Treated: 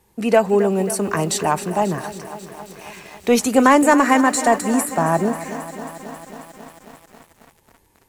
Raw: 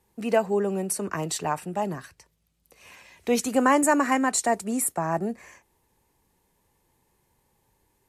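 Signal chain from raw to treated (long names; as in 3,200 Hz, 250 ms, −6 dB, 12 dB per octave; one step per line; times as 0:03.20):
de-essing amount 45%
in parallel at −3 dB: soft clipping −17.5 dBFS, distortion −14 dB
on the sum: feedback echo at a low word length 270 ms, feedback 80%, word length 7 bits, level −14 dB
level +4 dB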